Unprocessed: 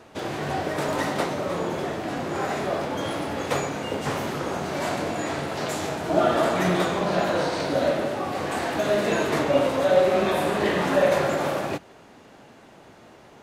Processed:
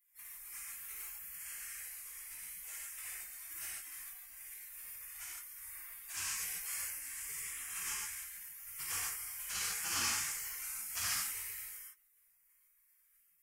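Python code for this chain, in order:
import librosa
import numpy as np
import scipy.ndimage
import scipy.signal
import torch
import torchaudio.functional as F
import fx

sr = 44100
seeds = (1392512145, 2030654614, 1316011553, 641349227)

p1 = fx.highpass(x, sr, hz=71.0, slope=6)
p2 = fx.high_shelf_res(p1, sr, hz=2800.0, db=11.5, q=3.0)
p3 = fx.spec_gate(p2, sr, threshold_db=-30, keep='weak')
p4 = 10.0 ** (-37.5 / 20.0) * np.tanh(p3 / 10.0 ** (-37.5 / 20.0))
p5 = p3 + (p4 * 10.0 ** (-11.5 / 20.0))
p6 = fx.rev_gated(p5, sr, seeds[0], gate_ms=180, shape='flat', drr_db=-6.5)
y = p6 * 10.0 ** (-7.5 / 20.0)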